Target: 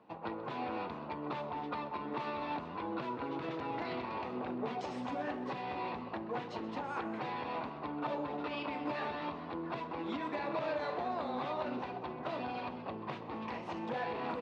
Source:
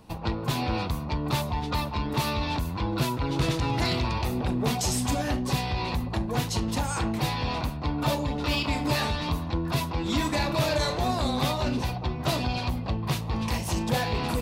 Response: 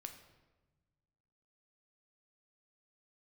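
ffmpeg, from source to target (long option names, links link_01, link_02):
-filter_complex "[0:a]aemphasis=mode=reproduction:type=50fm,asplit=2[link_01][link_02];[link_02]asplit=3[link_03][link_04][link_05];[link_03]adelay=217,afreqshift=140,volume=-14dB[link_06];[link_04]adelay=434,afreqshift=280,volume=-23.1dB[link_07];[link_05]adelay=651,afreqshift=420,volume=-32.2dB[link_08];[link_06][link_07][link_08]amix=inputs=3:normalize=0[link_09];[link_01][link_09]amix=inputs=2:normalize=0,alimiter=limit=-19dB:level=0:latency=1:release=134,highpass=310,lowpass=2400,asplit=2[link_10][link_11];[link_11]aecho=0:1:129:0.15[link_12];[link_10][link_12]amix=inputs=2:normalize=0,volume=-5.5dB"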